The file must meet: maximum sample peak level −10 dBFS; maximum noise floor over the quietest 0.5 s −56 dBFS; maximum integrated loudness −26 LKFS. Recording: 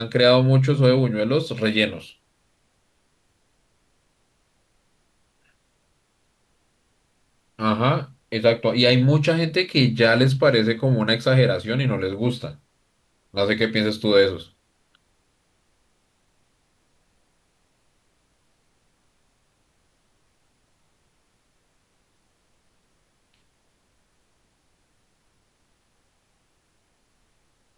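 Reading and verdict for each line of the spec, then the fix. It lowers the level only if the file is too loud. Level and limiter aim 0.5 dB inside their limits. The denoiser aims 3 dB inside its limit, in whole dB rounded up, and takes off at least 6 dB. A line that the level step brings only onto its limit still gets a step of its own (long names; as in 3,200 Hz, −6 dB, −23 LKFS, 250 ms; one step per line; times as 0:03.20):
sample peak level −5.0 dBFS: out of spec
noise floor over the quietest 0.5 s −67 dBFS: in spec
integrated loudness −20.0 LKFS: out of spec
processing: level −6.5 dB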